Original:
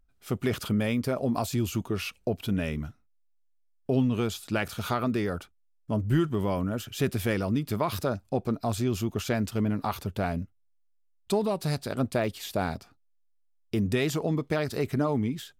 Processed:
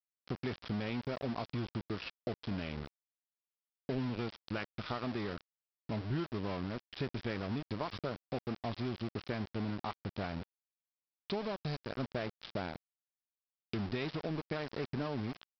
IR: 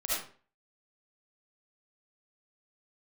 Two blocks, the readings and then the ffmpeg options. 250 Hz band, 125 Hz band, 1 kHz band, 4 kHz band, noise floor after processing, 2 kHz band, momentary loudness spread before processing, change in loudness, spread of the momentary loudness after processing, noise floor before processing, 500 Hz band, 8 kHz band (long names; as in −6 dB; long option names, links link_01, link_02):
−10.5 dB, −10.5 dB, −9.5 dB, −7.5 dB, below −85 dBFS, −8.5 dB, 6 LU, −10.5 dB, 5 LU, −67 dBFS, −10.5 dB, below −25 dB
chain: -af "acompressor=threshold=-54dB:ratio=2,aresample=11025,aeval=exprs='val(0)*gte(abs(val(0)),0.00562)':channel_layout=same,aresample=44100,volume=6dB"